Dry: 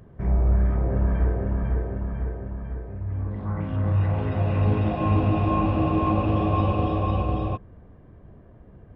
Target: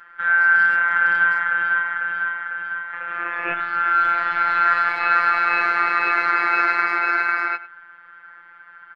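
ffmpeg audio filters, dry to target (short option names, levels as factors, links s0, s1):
-filter_complex "[0:a]asettb=1/sr,asplit=3[s0][s1][s2];[s0]atrim=end=2.934[s3];[s1]atrim=start=2.93:end=3.54,asetpts=PTS-STARTPTS,afade=t=in:d=0.004:c=qsin,afade=t=out:st=0.606:d=0.004:c=qsin,equalizer=f=125:t=o:w=1:g=-11,equalizer=f=250:t=o:w=1:g=11,equalizer=f=500:t=o:w=1:g=4,equalizer=f=1000:t=o:w=1:g=11[s4];[s2]atrim=start=3.536[s5];[s3][s4]acrossfade=d=0.004:c1=hsin:c2=qsin[s6];[s6][s5]acrossfade=d=0.004:c1=qsin:c2=hsin,aeval=exprs='val(0)*sin(2*PI*1500*n/s)':c=same,afftfilt=real='hypot(re,im)*cos(PI*b)':imag='0':win_size=1024:overlap=0.75,asplit=2[s7][s8];[s8]adelay=100,highpass=300,lowpass=3400,asoftclip=type=hard:threshold=0.106,volume=0.158[s9];[s7][s9]amix=inputs=2:normalize=0,volume=2.66"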